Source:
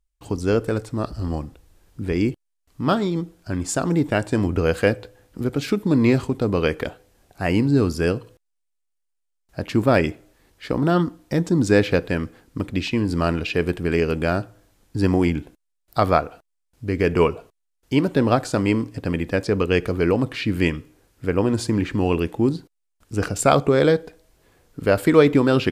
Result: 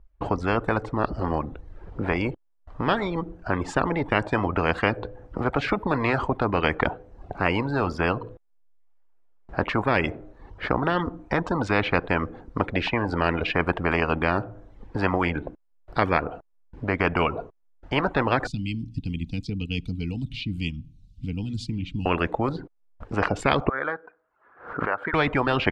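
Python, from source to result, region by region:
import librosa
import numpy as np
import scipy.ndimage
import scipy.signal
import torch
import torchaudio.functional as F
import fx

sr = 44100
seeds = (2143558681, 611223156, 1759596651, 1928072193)

y = fx.chain(x, sr, fx.cheby2_bandstop(low_hz=350.0, high_hz=1800.0, order=4, stop_db=40),
    fx.high_shelf(hz=9200.0, db=4.0), at=(18.47, 22.06))
y = fx.chain(y, sr, fx.bandpass_q(hz=1400.0, q=4.7),
    fx.pre_swell(db_per_s=120.0), at=(23.69, 25.14))
y = fx.dereverb_blind(y, sr, rt60_s=0.62)
y = scipy.signal.sosfilt(scipy.signal.butter(2, 1000.0, 'lowpass', fs=sr, output='sos'), y)
y = fx.spectral_comp(y, sr, ratio=4.0)
y = y * librosa.db_to_amplitude(-1.5)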